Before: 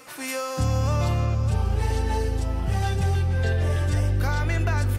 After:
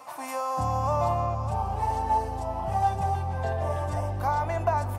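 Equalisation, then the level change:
high-pass filter 67 Hz
dynamic equaliser 3,700 Hz, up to −5 dB, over −47 dBFS, Q 1
flat-topped bell 830 Hz +16 dB 1.1 octaves
−7.0 dB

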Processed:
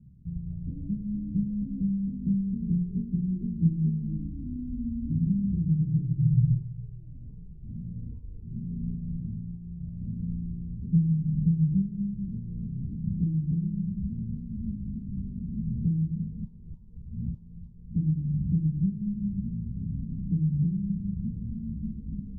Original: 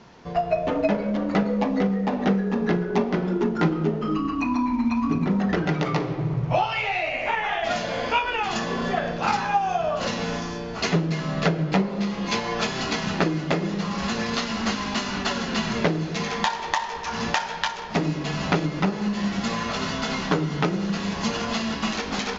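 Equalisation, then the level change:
inverse Chebyshev low-pass filter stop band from 690 Hz, stop band 70 dB
+6.0 dB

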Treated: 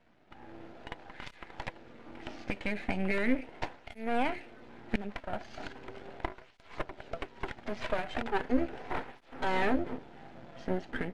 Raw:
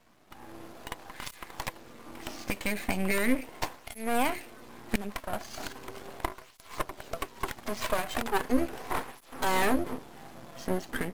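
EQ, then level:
low-pass filter 3,000 Hz 12 dB per octave
parametric band 1,100 Hz −10.5 dB 0.2 octaves
−2.0 dB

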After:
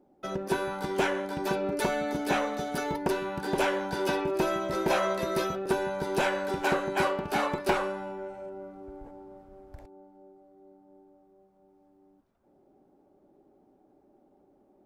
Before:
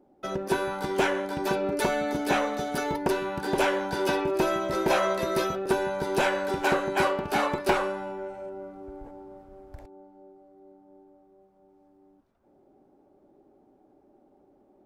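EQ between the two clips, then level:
parametric band 180 Hz +3 dB 0.36 octaves
−2.5 dB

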